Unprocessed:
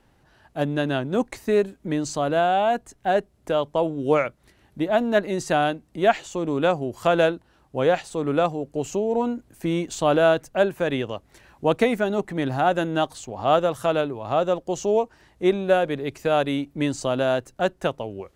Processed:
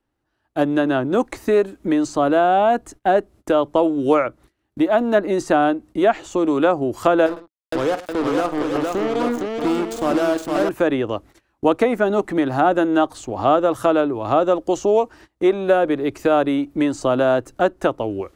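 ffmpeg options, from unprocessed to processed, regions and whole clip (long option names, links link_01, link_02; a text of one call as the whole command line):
ffmpeg -i in.wav -filter_complex "[0:a]asettb=1/sr,asplit=3[link_01][link_02][link_03];[link_01]atrim=end=7.264[link_04];[link_02]atrim=start=7.26:end=10.69,asetpts=PTS-STARTPTS,afade=type=in:duration=0.004:curve=qsin,afade=type=out:start_time=3.426:duration=0.004:curve=qsin,acompressor=threshold=-30dB:ratio=2:attack=3.2:release=140:knee=1:detection=peak,acrusher=bits=4:mix=0:aa=0.5,aecho=1:1:46|104|462|826:0.224|0.119|0.631|0.398,atrim=end_sample=151263[link_05];[link_03]atrim=start=10.686[link_06];[link_04][link_05]acrossfade=duration=0.004:curve1=hsin:curve2=qsin[link_07];[link_07][link_06]acrossfade=duration=0.004:curve1=qsin:curve2=hsin,agate=range=-23dB:threshold=-47dB:ratio=16:detection=peak,equalizer=frequency=160:width_type=o:width=0.33:gain=-8,equalizer=frequency=315:width_type=o:width=0.33:gain=9,equalizer=frequency=1250:width_type=o:width=0.33:gain=4,acrossover=split=470|1600[link_08][link_09][link_10];[link_08]acompressor=threshold=-27dB:ratio=4[link_11];[link_09]acompressor=threshold=-21dB:ratio=4[link_12];[link_10]acompressor=threshold=-42dB:ratio=4[link_13];[link_11][link_12][link_13]amix=inputs=3:normalize=0,volume=6.5dB" out.wav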